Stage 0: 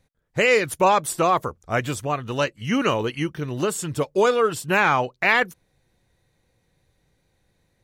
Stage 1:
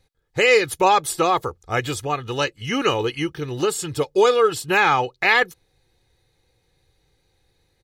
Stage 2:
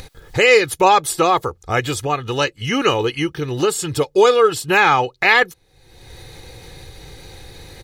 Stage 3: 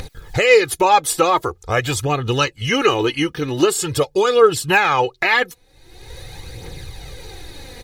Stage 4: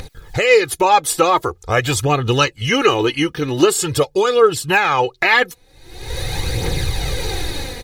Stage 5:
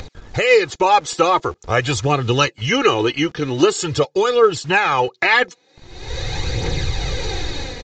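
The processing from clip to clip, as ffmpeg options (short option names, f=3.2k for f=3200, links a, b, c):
-af "equalizer=f=4.1k:t=o:w=0.77:g=6,aecho=1:1:2.4:0.52"
-af "acompressor=mode=upward:threshold=-22dB:ratio=2.5,volume=3.5dB"
-af "alimiter=limit=-8dB:level=0:latency=1:release=147,aphaser=in_gain=1:out_gain=1:delay=4.2:decay=0.46:speed=0.45:type=triangular,volume=1.5dB"
-af "dynaudnorm=f=200:g=5:m=14.5dB,volume=-1dB"
-filter_complex "[0:a]acrossover=split=180|1400[a][b][c];[a]acrusher=bits=6:mix=0:aa=0.000001[d];[d][b][c]amix=inputs=3:normalize=0,aresample=16000,aresample=44100,volume=-1dB"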